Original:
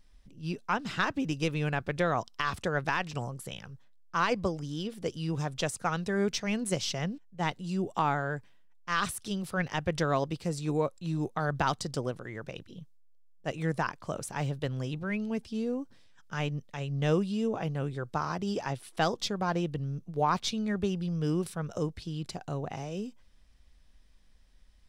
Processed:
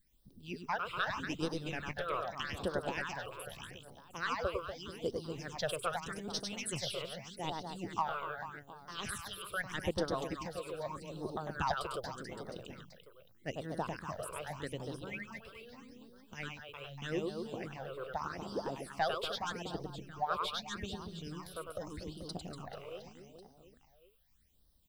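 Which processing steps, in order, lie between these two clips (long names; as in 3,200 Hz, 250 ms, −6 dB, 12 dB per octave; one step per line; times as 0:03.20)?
harmonic and percussive parts rebalanced harmonic −16 dB
background noise violet −74 dBFS
reverse bouncing-ball delay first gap 100 ms, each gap 1.4×, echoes 5
all-pass phaser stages 8, 0.82 Hz, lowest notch 230–2,400 Hz
level −2.5 dB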